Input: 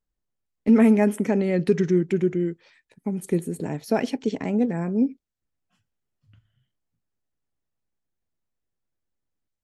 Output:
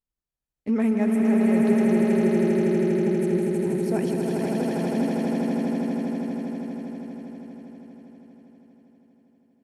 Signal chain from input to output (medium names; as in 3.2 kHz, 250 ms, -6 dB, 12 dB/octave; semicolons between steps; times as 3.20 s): Chebyshev shaper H 6 -36 dB, 8 -35 dB, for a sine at -8 dBFS; on a send: echo with a slow build-up 80 ms, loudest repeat 8, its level -4.5 dB; on the sum: trim -7.5 dB